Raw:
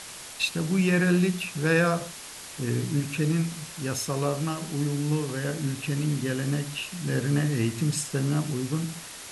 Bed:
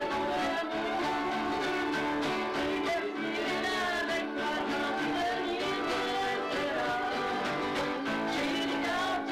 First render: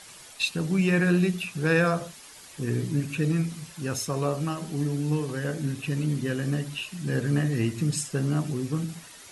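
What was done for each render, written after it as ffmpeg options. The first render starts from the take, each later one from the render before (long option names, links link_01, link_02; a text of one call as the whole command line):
ffmpeg -i in.wav -af "afftdn=noise_reduction=9:noise_floor=-42" out.wav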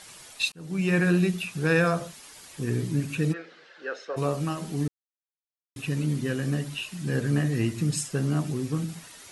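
ffmpeg -i in.wav -filter_complex "[0:a]asplit=3[link_01][link_02][link_03];[link_01]afade=type=out:start_time=3.32:duration=0.02[link_04];[link_02]highpass=frequency=420:width=0.5412,highpass=frequency=420:width=1.3066,equalizer=frequency=490:width_type=q:width=4:gain=5,equalizer=frequency=730:width_type=q:width=4:gain=-3,equalizer=frequency=1000:width_type=q:width=4:gain=-9,equalizer=frequency=1600:width_type=q:width=4:gain=8,equalizer=frequency=2400:width_type=q:width=4:gain=-7,equalizer=frequency=3400:width_type=q:width=4:gain=-4,lowpass=frequency=3700:width=0.5412,lowpass=frequency=3700:width=1.3066,afade=type=in:start_time=3.32:duration=0.02,afade=type=out:start_time=4.16:duration=0.02[link_05];[link_03]afade=type=in:start_time=4.16:duration=0.02[link_06];[link_04][link_05][link_06]amix=inputs=3:normalize=0,asplit=4[link_07][link_08][link_09][link_10];[link_07]atrim=end=0.52,asetpts=PTS-STARTPTS,afade=type=out:start_time=0.516:duration=0.004:curve=hsin[link_11];[link_08]atrim=start=0.52:end=4.88,asetpts=PTS-STARTPTS,afade=type=in:duration=0.43,afade=type=out:start_time=4.356:duration=0.004:curve=hsin[link_12];[link_09]atrim=start=4.88:end=5.76,asetpts=PTS-STARTPTS,volume=0[link_13];[link_10]atrim=start=5.76,asetpts=PTS-STARTPTS,afade=type=in:duration=0.004:curve=hsin[link_14];[link_11][link_12][link_13][link_14]concat=n=4:v=0:a=1" out.wav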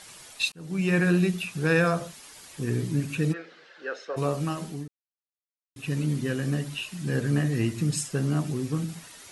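ffmpeg -i in.wav -filter_complex "[0:a]asplit=3[link_01][link_02][link_03];[link_01]atrim=end=4.91,asetpts=PTS-STARTPTS,afade=type=out:start_time=4.62:duration=0.29:silence=0.0630957[link_04];[link_02]atrim=start=4.91:end=5.63,asetpts=PTS-STARTPTS,volume=-24dB[link_05];[link_03]atrim=start=5.63,asetpts=PTS-STARTPTS,afade=type=in:duration=0.29:silence=0.0630957[link_06];[link_04][link_05][link_06]concat=n=3:v=0:a=1" out.wav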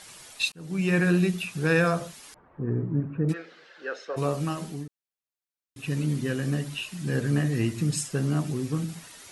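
ffmpeg -i in.wav -filter_complex "[0:a]asettb=1/sr,asplit=3[link_01][link_02][link_03];[link_01]atrim=end=2.344[link_04];[link_02]atrim=start=2.34:end=3.29,asetpts=PTS-STARTPTS,afade=type=in:duration=0.004:curve=qsin,afade=type=out:start_time=0.946:duration=0.004:curve=qsin,lowpass=frequency=1300:width=0.5412,lowpass=frequency=1300:width=1.3066[link_05];[link_03]atrim=start=3.286[link_06];[link_04][link_05]acrossfade=duration=0.004:curve1=hsin:curve2=qsin[link_07];[link_07][link_06]acrossfade=duration=0.004:curve1=qsin:curve2=hsin" out.wav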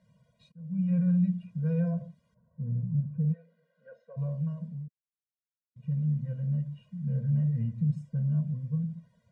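ffmpeg -i in.wav -af "bandpass=frequency=150:width_type=q:width=1.4:csg=0,afftfilt=real='re*eq(mod(floor(b*sr/1024/230),2),0)':imag='im*eq(mod(floor(b*sr/1024/230),2),0)':win_size=1024:overlap=0.75" out.wav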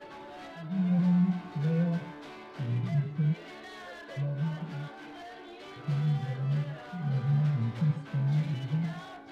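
ffmpeg -i in.wav -i bed.wav -filter_complex "[1:a]volume=-14.5dB[link_01];[0:a][link_01]amix=inputs=2:normalize=0" out.wav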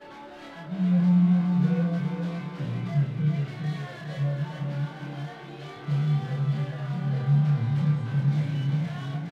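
ffmpeg -i in.wav -filter_complex "[0:a]asplit=2[link_01][link_02];[link_02]adelay=28,volume=-2dB[link_03];[link_01][link_03]amix=inputs=2:normalize=0,aecho=1:1:411|822|1233|1644|2055:0.562|0.236|0.0992|0.0417|0.0175" out.wav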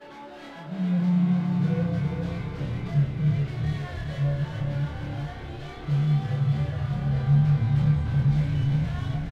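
ffmpeg -i in.wav -filter_complex "[0:a]asplit=2[link_01][link_02];[link_02]adelay=14,volume=-12dB[link_03];[link_01][link_03]amix=inputs=2:normalize=0,asplit=8[link_04][link_05][link_06][link_07][link_08][link_09][link_10][link_11];[link_05]adelay=335,afreqshift=-33,volume=-10dB[link_12];[link_06]adelay=670,afreqshift=-66,volume=-14.3dB[link_13];[link_07]adelay=1005,afreqshift=-99,volume=-18.6dB[link_14];[link_08]adelay=1340,afreqshift=-132,volume=-22.9dB[link_15];[link_09]adelay=1675,afreqshift=-165,volume=-27.2dB[link_16];[link_10]adelay=2010,afreqshift=-198,volume=-31.5dB[link_17];[link_11]adelay=2345,afreqshift=-231,volume=-35.8dB[link_18];[link_04][link_12][link_13][link_14][link_15][link_16][link_17][link_18]amix=inputs=8:normalize=0" out.wav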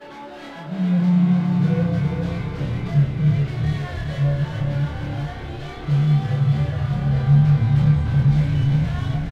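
ffmpeg -i in.wav -af "volume=5.5dB" out.wav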